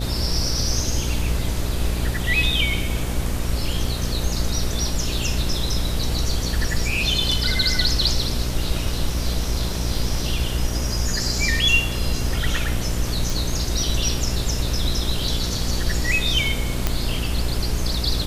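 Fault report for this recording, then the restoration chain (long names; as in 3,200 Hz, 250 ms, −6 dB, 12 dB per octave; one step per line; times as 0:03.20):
mains buzz 60 Hz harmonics 11 −26 dBFS
0:13.30: click
0:16.87: click −5 dBFS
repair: click removal
hum removal 60 Hz, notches 11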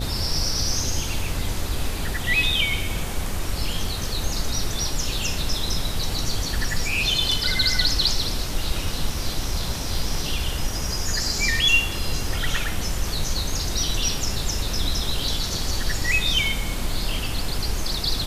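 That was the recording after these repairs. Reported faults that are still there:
none of them is left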